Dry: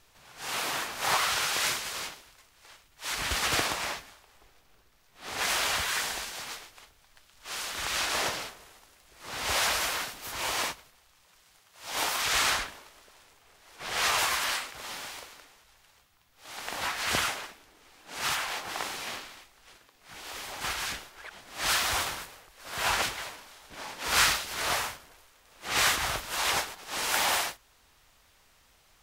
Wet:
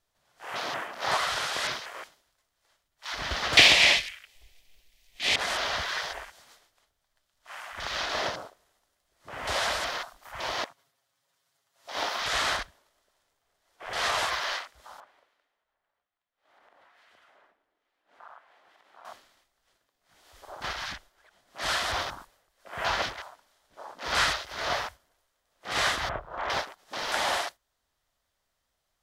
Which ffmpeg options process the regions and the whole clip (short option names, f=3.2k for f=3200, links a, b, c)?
-filter_complex "[0:a]asettb=1/sr,asplit=3[a][b][c];[a]atrim=end=3.574[d];[b]atrim=start=3.57:end=5.36,asetpts=PTS-STARTPTS,afade=t=in:d=0.004:c=qsin,afade=t=out:st=1.786:d=0.004:c=qsin,highshelf=f=1.8k:t=q:w=3:g=9.5,acontrast=87[e];[c]atrim=start=5.356[f];[d][e]acrossfade=d=0.004:c1=hsin:c2=qsin[g];[g][f]acrossfade=d=0.004:c1=qsin:c2=hsin,asettb=1/sr,asplit=3[h][i][j];[h]atrim=end=10.644[k];[i]atrim=start=10.64:end=11.85,asetpts=PTS-STARTPTS,afade=t=in:d=0.004:c=qsin,afade=t=out:st=1.206:d=0.004:c=qsin,aecho=1:1:7.3:0.88,atrim=end_sample=53361,acompressor=threshold=-44dB:ratio=3:attack=3.2:release=140:knee=1:detection=peak,highpass=f=76:w=0.5412,highpass=f=76:w=1.3066[l];[j]atrim=start=11.846[m];[k][l]acrossfade=d=0.004:c1=hsin:c2=qsin[n];[n][m]acrossfade=d=0.004:c1=qsin:c2=hsin,asettb=1/sr,asplit=3[o][p][q];[o]atrim=end=15.004[r];[p]atrim=start=15:end=19.05,asetpts=PTS-STARTPTS,afade=t=in:d=0.004:c=qsin,afade=t=out:st=4.046:d=0.004:c=qsin,acrossover=split=2000[s][t];[s]aeval=exprs='val(0)*(1-0.5/2+0.5/2*cos(2*PI*1.2*n/s))':c=same[u];[t]aeval=exprs='val(0)*(1-0.5/2-0.5/2*cos(2*PI*1.2*n/s))':c=same[v];[u][v]amix=inputs=2:normalize=0,acrossover=split=240 3100:gain=0.251 1 0.126[w][x][y];[w][x][y]amix=inputs=3:normalize=0,acompressor=threshold=-40dB:ratio=10:attack=3.2:release=140:knee=1:detection=peak[z];[q]atrim=start=19.046[aa];[r][z]acrossfade=d=0.004:c1=hsin:c2=qsin[ab];[ab][aa]acrossfade=d=0.004:c1=qsin:c2=hsin,asettb=1/sr,asplit=3[ac][ad][ae];[ac]atrim=end=26.094[af];[ad]atrim=start=26.09:end=26.5,asetpts=PTS-STARTPTS,afade=t=in:d=0.004:c=qsin,afade=t=out:st=0.406:d=0.004:c=qsin,lowpass=1.7k,aeval=exprs='val(0)*gte(abs(val(0)),0.0015)':c=same,asplit=2[ag][ah];[ah]adelay=32,volume=-10dB[ai];[ag][ai]amix=inputs=2:normalize=0,atrim=end_sample=18081[aj];[ae]atrim=start=26.496[ak];[af][aj]acrossfade=d=0.004:c1=hsin:c2=qsin[al];[al][ak]acrossfade=d=0.004:c1=qsin:c2=hsin,afwtdn=0.0141,acrossover=split=5200[am][an];[an]acompressor=threshold=-40dB:ratio=4:attack=1:release=60[ao];[am][ao]amix=inputs=2:normalize=0,superequalizer=8b=1.58:12b=0.631"